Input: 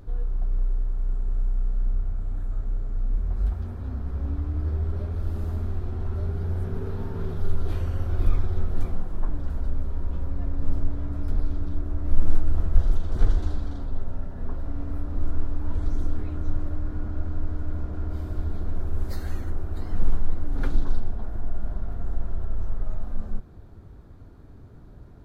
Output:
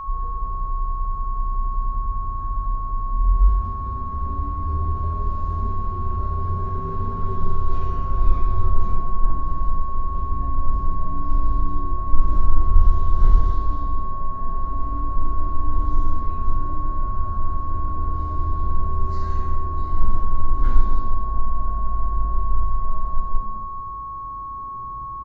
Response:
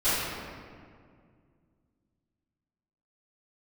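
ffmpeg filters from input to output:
-filter_complex "[0:a]aresample=16000,aresample=44100[link_01];[1:a]atrim=start_sample=2205,asetrate=88200,aresample=44100[link_02];[link_01][link_02]afir=irnorm=-1:irlink=0,aeval=exprs='val(0)+0.112*sin(2*PI*1100*n/s)':channel_layout=same,volume=-10dB"

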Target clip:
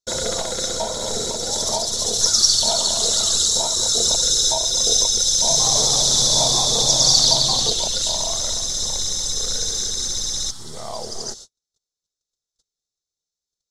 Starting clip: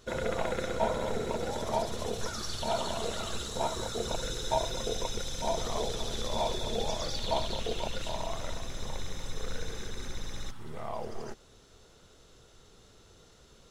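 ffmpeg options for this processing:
ffmpeg -i in.wav -filter_complex "[0:a]lowpass=5300,agate=range=-47dB:threshold=-50dB:ratio=16:detection=peak,equalizer=frequency=650:width_type=o:width=1.1:gain=3,alimiter=limit=-19dB:level=0:latency=1:release=364,aexciter=amount=15.7:drive=8:freq=4100,asettb=1/sr,asplit=3[link_01][link_02][link_03];[link_01]atrim=end=5.304[link_04];[link_02]atrim=start=5.3:end=7.7,asetpts=PTS-STARTPTS,afade=type=in:duration=0.004:curve=qsin,afade=type=out:start_time=2.396:duration=0.004:curve=qsin,asplit=5[link_05][link_06][link_07][link_08][link_09];[link_06]adelay=174,afreqshift=120,volume=-3dB[link_10];[link_07]adelay=348,afreqshift=240,volume=-12.6dB[link_11];[link_08]adelay=522,afreqshift=360,volume=-22.3dB[link_12];[link_09]adelay=696,afreqshift=480,volume=-31.9dB[link_13];[link_05][link_10][link_11][link_12][link_13]amix=inputs=5:normalize=0,atrim=end_sample=105840[link_14];[link_03]atrim=start=7.696[link_15];[link_04][link_14]acrossfade=duration=0.004:curve1=hsin:curve2=qsin[link_16];[link_16][link_15]acrossfade=duration=0.004:curve1=qsin:curve2=hsin,volume=3.5dB" out.wav

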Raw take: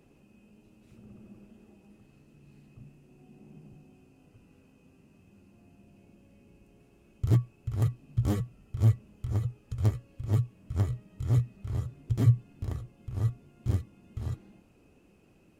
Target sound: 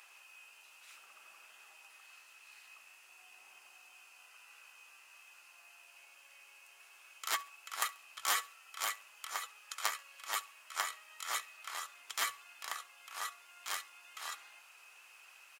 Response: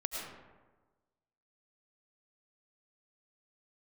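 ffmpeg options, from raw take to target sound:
-af "highpass=frequency=1100:width=0.5412,highpass=frequency=1100:width=1.3066,aecho=1:1:68|136|204:0.0794|0.0294|0.0109,volume=14.5dB"

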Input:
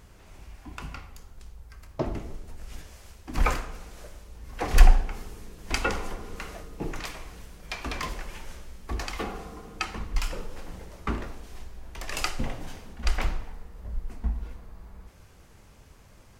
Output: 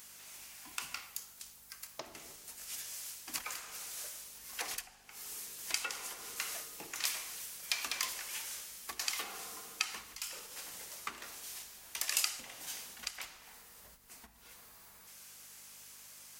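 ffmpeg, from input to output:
ffmpeg -i in.wav -af "acompressor=threshold=-33dB:ratio=12,aeval=exprs='val(0)+0.00355*(sin(2*PI*50*n/s)+sin(2*PI*2*50*n/s)/2+sin(2*PI*3*50*n/s)/3+sin(2*PI*4*50*n/s)/4+sin(2*PI*5*50*n/s)/5)':channel_layout=same,aderivative,volume=12dB" out.wav

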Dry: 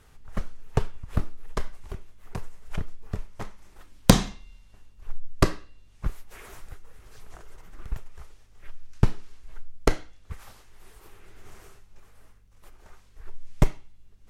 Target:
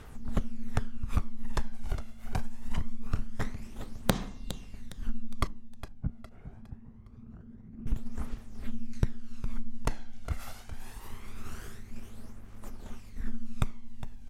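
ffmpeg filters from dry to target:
ffmpeg -i in.wav -filter_complex "[0:a]tremolo=f=230:d=0.4,asettb=1/sr,asplit=3[link_01][link_02][link_03];[link_01]atrim=end=5.474[link_04];[link_02]atrim=start=5.47:end=7.87,asetpts=PTS-STARTPTS,afade=type=in:duration=0.004:curve=qsin,afade=type=out:start_time=2.396:duration=0.004:curve=qsin,bandpass=frequency=150:width_type=q:width=1.2:csg=0[link_05];[link_03]atrim=start=7.866[link_06];[link_04][link_05]acrossfade=duration=0.004:curve1=hsin:curve2=qsin[link_07];[link_07][link_06]acrossfade=duration=0.004:curve1=qsin:curve2=hsin,acompressor=threshold=-33dB:ratio=12,aecho=1:1:410|820|1230|1640:0.251|0.1|0.0402|0.0161,aphaser=in_gain=1:out_gain=1:delay=1.5:decay=0.49:speed=0.24:type=triangular,volume=5dB" out.wav

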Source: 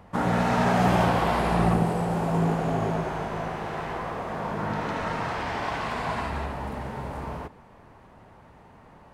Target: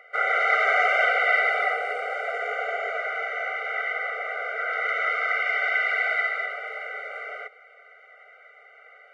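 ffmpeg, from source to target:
ffmpeg -i in.wav -af "lowpass=frequency=1900:width_type=q:width=9.9,crystalizer=i=9.5:c=0,afftfilt=real='re*eq(mod(floor(b*sr/1024/390),2),1)':imag='im*eq(mod(floor(b*sr/1024/390),2),1)':win_size=1024:overlap=0.75,volume=-4dB" out.wav

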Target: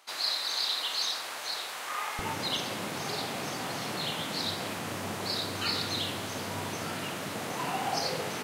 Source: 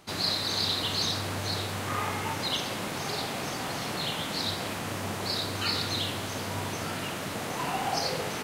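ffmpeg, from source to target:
ffmpeg -i in.wav -af "asetnsamples=nb_out_samples=441:pad=0,asendcmd='2.19 highpass f 110',highpass=780,volume=-1.5dB" out.wav

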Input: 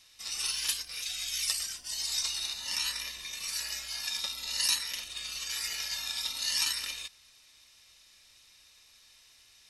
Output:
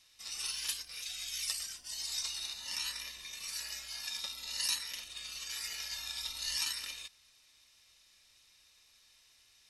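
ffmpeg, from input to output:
ffmpeg -i in.wav -filter_complex "[0:a]asettb=1/sr,asplit=3[link_01][link_02][link_03];[link_01]atrim=end=5.714[link_04];[link_02]atrim=start=5.71:end=6.57,asetpts=PTS-STARTPTS,afade=type=in:duration=0.004:curve=qsin,afade=type=out:start_time=0.856:duration=0.004:curve=qsin,asubboost=boost=11:cutoff=110[link_05];[link_03]atrim=start=6.566[link_06];[link_04][link_05]acrossfade=duration=0.004:curve1=hsin:curve2=qsin[link_07];[link_07][link_06]acrossfade=duration=0.004:curve1=qsin:curve2=hsin,volume=-5.5dB" out.wav

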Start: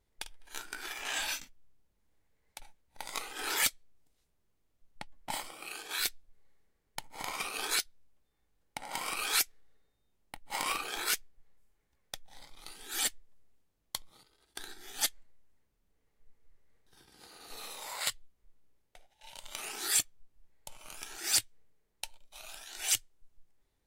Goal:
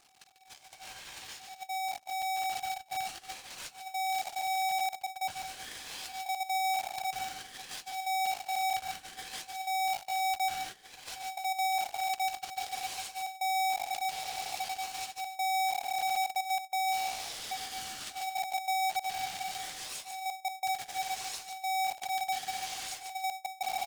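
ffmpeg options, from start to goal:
ffmpeg -i in.wav -filter_complex "[0:a]aeval=exprs='val(0)+0.5*0.0299*sgn(val(0))':channel_layout=same,acompressor=threshold=-37dB:ratio=8,tiltshelf=frequency=1400:gain=-8,asplit=2[link_01][link_02];[link_02]aecho=0:1:145|290|435:0.631|0.139|0.0305[link_03];[link_01][link_03]amix=inputs=2:normalize=0,asubboost=boost=9.5:cutoff=130,agate=range=-17dB:threshold=-31dB:ratio=16:detection=peak,lowpass=7100,aeval=exprs='val(0)*sgn(sin(2*PI*760*n/s))':channel_layout=same,volume=-7.5dB" out.wav

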